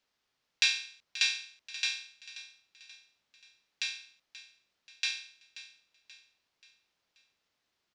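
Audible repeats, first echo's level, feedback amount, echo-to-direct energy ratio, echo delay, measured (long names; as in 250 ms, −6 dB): 3, −15.5 dB, 46%, −14.5 dB, 532 ms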